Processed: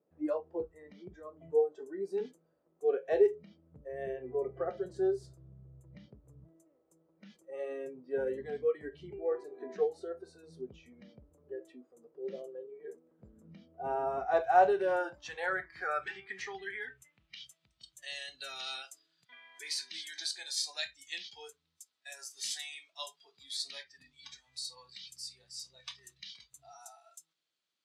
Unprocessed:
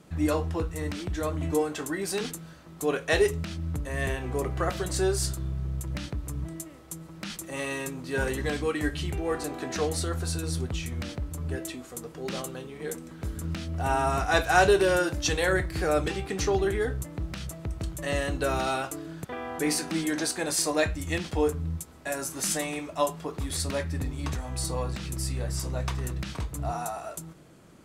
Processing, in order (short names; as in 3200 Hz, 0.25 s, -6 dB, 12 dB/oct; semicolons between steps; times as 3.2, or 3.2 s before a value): 1.19–2.18 dynamic EQ 2300 Hz, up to -5 dB, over -46 dBFS, Q 1; spectral noise reduction 17 dB; band-pass sweep 490 Hz -> 3900 Hz, 14.06–17.79; gain +1 dB